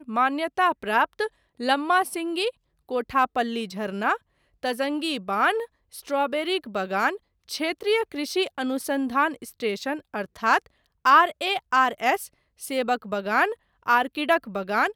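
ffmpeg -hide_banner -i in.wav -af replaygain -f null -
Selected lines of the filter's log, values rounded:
track_gain = +4.0 dB
track_peak = 0.366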